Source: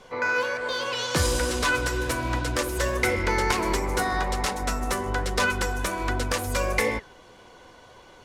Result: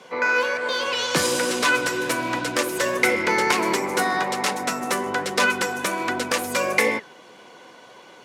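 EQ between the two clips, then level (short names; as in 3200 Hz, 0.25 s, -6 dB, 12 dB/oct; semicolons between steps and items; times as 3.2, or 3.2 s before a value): HPF 160 Hz 24 dB/oct; bell 2400 Hz +3 dB 0.68 oct; +3.5 dB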